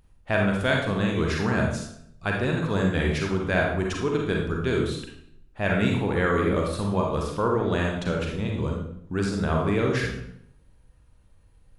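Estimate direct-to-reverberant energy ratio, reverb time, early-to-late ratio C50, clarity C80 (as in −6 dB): −0.5 dB, 0.70 s, 2.5 dB, 6.0 dB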